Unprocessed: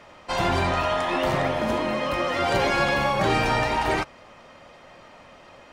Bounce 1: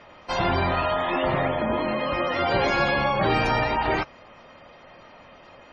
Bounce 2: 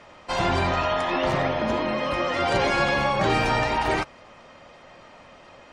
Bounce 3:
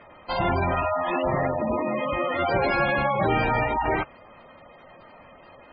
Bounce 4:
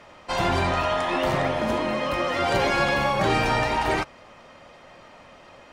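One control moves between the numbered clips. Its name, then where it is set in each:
spectral gate, under each frame's peak: -25 dB, -40 dB, -15 dB, -55 dB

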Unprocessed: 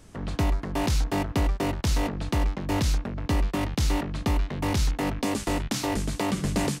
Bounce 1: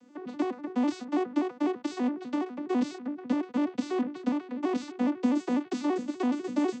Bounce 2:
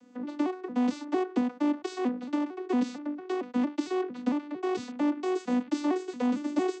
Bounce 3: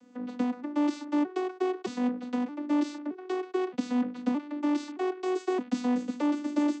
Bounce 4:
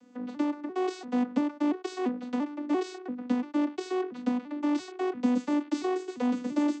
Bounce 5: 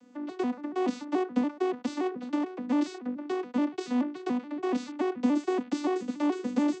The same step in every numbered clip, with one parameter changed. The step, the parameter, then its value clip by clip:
vocoder on a broken chord, a note every: 83 ms, 227 ms, 620 ms, 342 ms, 143 ms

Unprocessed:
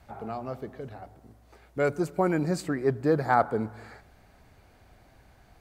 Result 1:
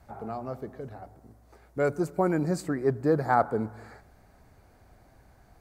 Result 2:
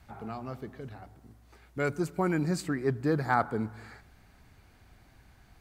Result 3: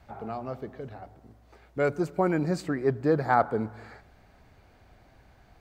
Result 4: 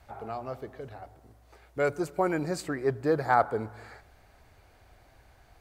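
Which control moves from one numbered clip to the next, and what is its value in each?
peaking EQ, frequency: 3 kHz, 580 Hz, 11 kHz, 200 Hz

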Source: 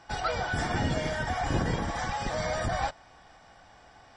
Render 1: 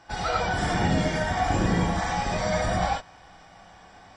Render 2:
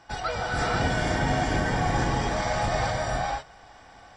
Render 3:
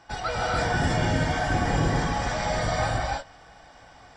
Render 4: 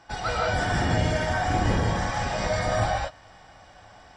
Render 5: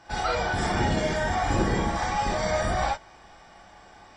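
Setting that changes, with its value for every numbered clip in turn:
gated-style reverb, gate: 120 ms, 540 ms, 340 ms, 210 ms, 80 ms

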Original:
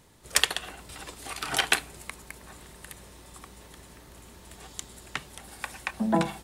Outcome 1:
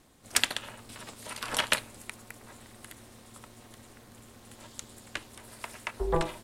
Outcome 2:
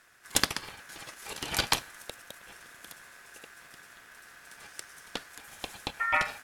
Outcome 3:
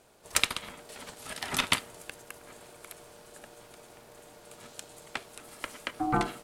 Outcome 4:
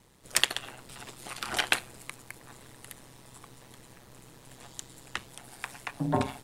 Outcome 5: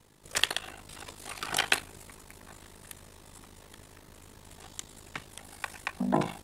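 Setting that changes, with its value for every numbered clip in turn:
ring modulator, frequency: 170 Hz, 1.6 kHz, 530 Hz, 66 Hz, 26 Hz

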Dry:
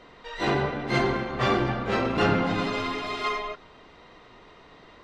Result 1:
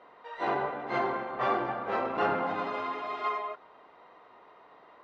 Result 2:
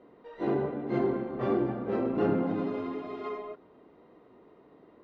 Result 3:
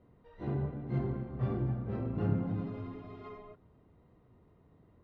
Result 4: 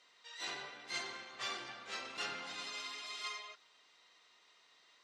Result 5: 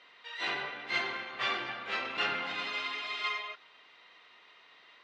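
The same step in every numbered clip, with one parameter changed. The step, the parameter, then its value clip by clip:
band-pass filter, frequency: 860 Hz, 320 Hz, 100 Hz, 7.4 kHz, 2.8 kHz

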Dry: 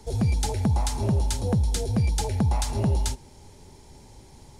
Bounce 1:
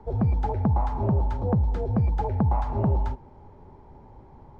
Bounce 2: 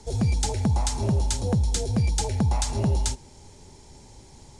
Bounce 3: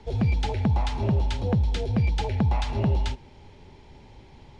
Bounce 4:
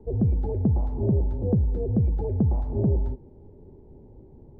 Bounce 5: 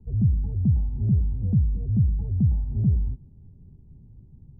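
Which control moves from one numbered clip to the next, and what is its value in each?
resonant low-pass, frequency: 1.1 kHz, 7.8 kHz, 2.9 kHz, 420 Hz, 160 Hz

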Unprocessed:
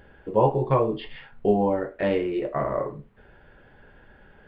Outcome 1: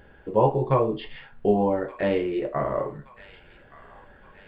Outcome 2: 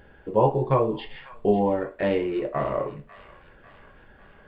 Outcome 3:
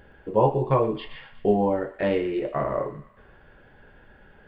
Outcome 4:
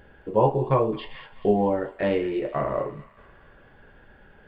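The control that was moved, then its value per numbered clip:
feedback echo behind a high-pass, time: 1174 ms, 547 ms, 120 ms, 216 ms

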